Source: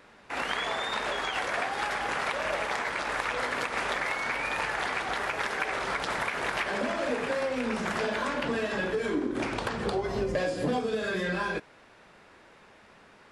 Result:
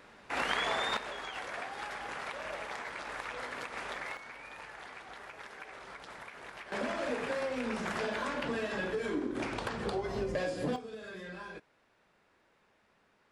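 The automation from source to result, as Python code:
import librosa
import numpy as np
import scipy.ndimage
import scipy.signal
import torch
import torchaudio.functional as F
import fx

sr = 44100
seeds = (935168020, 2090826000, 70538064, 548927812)

y = fx.gain(x, sr, db=fx.steps((0.0, -1.0), (0.97, -10.0), (4.17, -17.0), (6.72, -5.0), (10.76, -14.5)))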